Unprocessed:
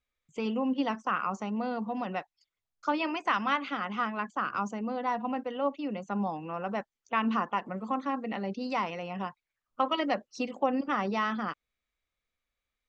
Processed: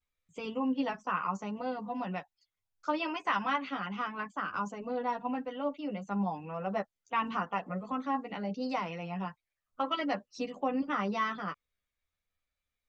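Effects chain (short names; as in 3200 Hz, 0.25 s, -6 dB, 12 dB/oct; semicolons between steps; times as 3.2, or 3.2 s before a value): chorus voices 6, 0.27 Hz, delay 11 ms, depth 1.1 ms; vibrato 0.74 Hz 40 cents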